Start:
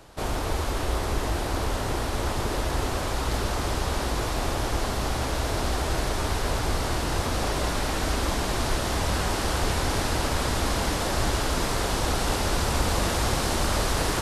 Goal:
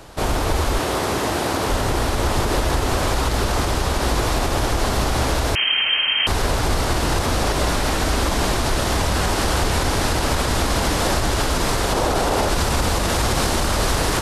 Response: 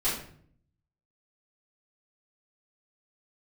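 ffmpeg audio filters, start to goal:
-filter_complex "[0:a]asettb=1/sr,asplit=3[s0][s1][s2];[s0]atrim=end=0.794[s3];[s1]atrim=start=0.79:end=1.7,asetpts=PTS-STARTPTS,afade=t=in:d=0.004:c=qsin,afade=t=out:st=0.906:d=0.004:c=qsin,highpass=130[s4];[s2]atrim=start=1.696[s5];[s3][s4]acrossfade=d=0.004:c1=hsin:c2=qsin[s6];[s6][s5]acrossfade=d=0.004:c1=qsin:c2=hsin,asettb=1/sr,asplit=3[s7][s8][s9];[s7]atrim=end=11.924[s10];[s8]atrim=start=11.92:end=12.49,asetpts=PTS-STARTPTS,afade=t=in:d=0.004:c=qsin,afade=t=out:st=0.566:d=0.004:c=qsin,equalizer=f=580:w=0.63:g=8[s11];[s9]atrim=start=12.486[s12];[s10][s11]acrossfade=d=0.004:c1=hsin:c2=qsin[s13];[s13][s12]acrossfade=d=0.004:c1=qsin:c2=hsin,alimiter=limit=0.119:level=0:latency=1:release=71,asettb=1/sr,asplit=3[s14][s15][s16];[s14]atrim=end=5.554[s17];[s15]atrim=start=5.55:end=6.27,asetpts=PTS-STARTPTS,afade=t=in:d=0.004:c=qsin,afade=t=out:st=0.716:d=0.004:c=qsin,lowpass=f=2700:t=q:w=0.5098,lowpass=f=2700:t=q:w=0.6013,lowpass=f=2700:t=q:w=0.9,lowpass=f=2700:t=q:w=2.563,afreqshift=-3200[s18];[s16]atrim=start=6.266[s19];[s17][s18]acrossfade=d=0.004:c1=hsin:c2=qsin[s20];[s20][s19]acrossfade=d=0.004:c1=qsin:c2=hsin,volume=2.66"

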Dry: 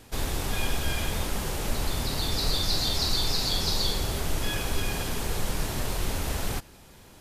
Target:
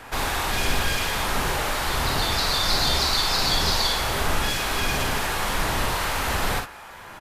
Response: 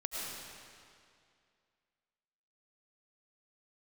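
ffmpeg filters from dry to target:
-filter_complex "[0:a]acrossover=split=760|2100[s0][s1][s2];[s0]tremolo=f=1.4:d=0.55[s3];[s1]aeval=exprs='0.0355*sin(PI/2*4.47*val(0)/0.0355)':c=same[s4];[s3][s4][s2]amix=inputs=3:normalize=0,aecho=1:1:42|57:0.376|0.398,volume=1.33"

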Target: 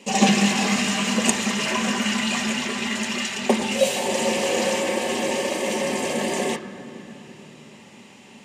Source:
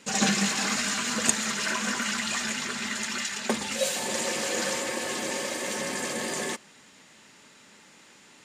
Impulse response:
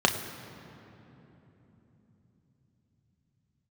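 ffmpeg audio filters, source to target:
-filter_complex "[0:a]asplit=2[s0][s1];[1:a]atrim=start_sample=2205,lowpass=3400[s2];[s1][s2]afir=irnorm=-1:irlink=0,volume=0.251[s3];[s0][s3]amix=inputs=2:normalize=0,volume=1.19"

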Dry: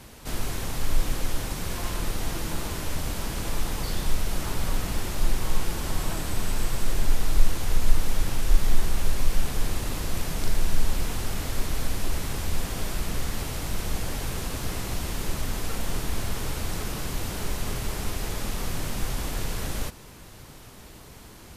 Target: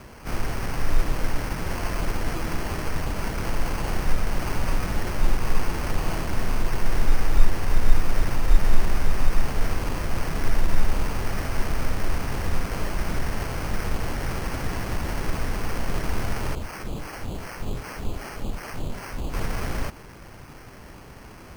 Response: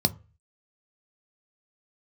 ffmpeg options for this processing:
-filter_complex "[0:a]asettb=1/sr,asplit=3[s0][s1][s2];[s0]atrim=end=16.554[s3];[s1]atrim=start=16.55:end=19.34,asetpts=PTS-STARTPTS,afade=t=in:d=0.004:c=qsin,afade=t=out:st=2.786:d=0.004:c=qsin,acrossover=split=1100[s4][s5];[s4]aeval=exprs='val(0)*(1-1/2+1/2*cos(2*PI*2.6*n/s))':c=same[s6];[s5]aeval=exprs='val(0)*(1-1/2-1/2*cos(2*PI*2.6*n/s))':c=same[s7];[s6][s7]amix=inputs=2:normalize=0[s8];[s2]atrim=start=19.336[s9];[s3][s8]acrossfade=d=0.004:c1=hsin:c2=qsin[s10];[s10][s9]acrossfade=d=0.004:c1=qsin:c2=hsin,acrusher=samples=12:mix=1:aa=0.000001,volume=1.33"

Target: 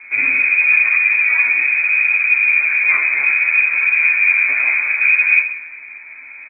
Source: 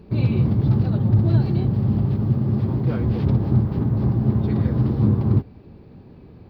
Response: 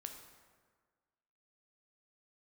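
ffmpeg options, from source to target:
-filter_complex "[0:a]asplit=2[s0][s1];[s1]highpass=f=720:p=1,volume=11.2,asoftclip=type=tanh:threshold=0.501[s2];[s0][s2]amix=inputs=2:normalize=0,lowpass=f=1000:p=1,volume=0.501,acrusher=bits=8:mode=log:mix=0:aa=0.000001,asplit=2[s3][s4];[1:a]atrim=start_sample=2205,asetrate=52920,aresample=44100,highshelf=f=3500:g=11.5[s5];[s4][s5]afir=irnorm=-1:irlink=0,volume=2.66[s6];[s3][s6]amix=inputs=2:normalize=0,lowpass=f=2200:t=q:w=0.5098,lowpass=f=2200:t=q:w=0.6013,lowpass=f=2200:t=q:w=0.9,lowpass=f=2200:t=q:w=2.563,afreqshift=-2600,asplit=2[s7][s8];[s8]adelay=11.9,afreqshift=-0.65[s9];[s7][s9]amix=inputs=2:normalize=1,volume=0.891"

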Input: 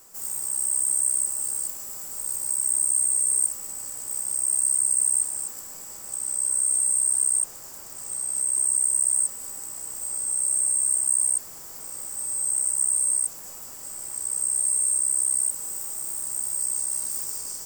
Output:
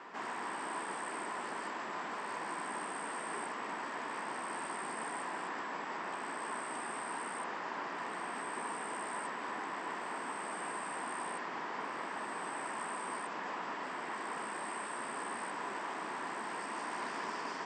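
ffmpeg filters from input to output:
-af "highpass=f=210:w=0.5412,highpass=f=210:w=1.3066,equalizer=f=540:t=q:w=4:g=-5,equalizer=f=1000:t=q:w=4:g=7,equalizer=f=1800:t=q:w=4:g=6,lowpass=f=3000:w=0.5412,lowpass=f=3000:w=1.3066,volume=3.35"

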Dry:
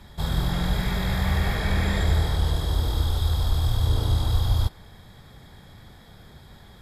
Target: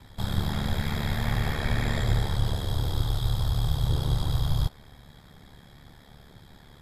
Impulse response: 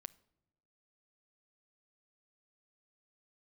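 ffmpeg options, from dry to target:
-af "aeval=exprs='val(0)*sin(2*PI*36*n/s)':c=same"

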